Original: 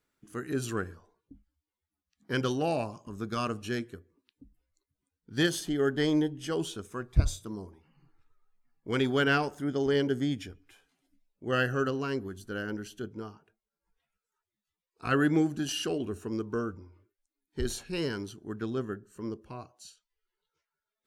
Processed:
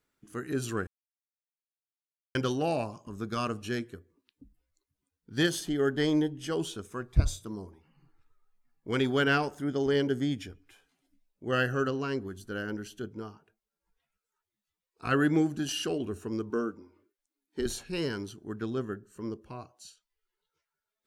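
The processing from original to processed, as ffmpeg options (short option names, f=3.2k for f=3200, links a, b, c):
-filter_complex "[0:a]asettb=1/sr,asplit=3[a][b][c];[a]atrim=end=11.874[d];[b]atrim=start=11.87:end=12.27,asetpts=PTS-STARTPTS,afade=t=in:d=0.004:c=qsin,afade=t=out:st=0.396:d=0.004:c=qsin,lowpass=9k[e];[c]atrim=start=12.266[f];[d][e]acrossfade=d=0.004:c1=hsin:c2=qsin[g];[g][f]acrossfade=d=0.004:c1=qsin:c2=hsin,asettb=1/sr,asplit=3[h][i][j];[h]atrim=end=16.504[k];[i]atrim=start=16.5:end=17.66,asetpts=PTS-STARTPTS,afade=t=in:d=0.004:c=qsin,afade=t=out:st=1.156:d=0.004:c=qsin,lowshelf=f=170:t=q:w=1.5:g=-11.5[l];[j]atrim=start=17.656[m];[k][l]acrossfade=d=0.004:c1=hsin:c2=qsin[n];[n][m]acrossfade=d=0.004:c1=qsin:c2=hsin,asplit=3[o][p][q];[o]atrim=end=0.87,asetpts=PTS-STARTPTS,afade=t=out:st=0.866:d=0.004:c=hsin[r];[p]atrim=start=0.87:end=2.35,asetpts=PTS-STARTPTS,volume=0[s];[q]atrim=start=2.35,asetpts=PTS-STARTPTS,afade=t=in:d=0.004:c=hsin[t];[r][s][t]concat=n=3:v=0:a=1"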